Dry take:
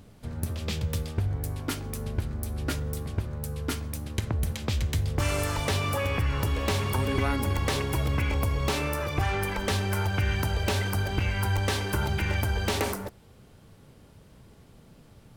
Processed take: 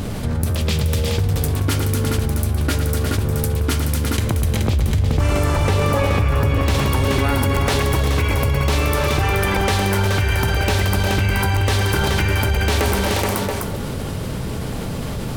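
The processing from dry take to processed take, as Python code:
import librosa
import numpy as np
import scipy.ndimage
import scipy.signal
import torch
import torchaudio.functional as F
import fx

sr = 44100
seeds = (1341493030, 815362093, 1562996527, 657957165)

y = fx.tilt_shelf(x, sr, db=4.5, hz=1500.0, at=(4.54, 6.63))
y = fx.echo_multitap(y, sr, ms=(113, 179, 258, 356, 426, 679), db=(-10.0, -16.0, -11.5, -9.5, -6.5, -17.5))
y = fx.env_flatten(y, sr, amount_pct=70)
y = y * librosa.db_to_amplitude(1.5)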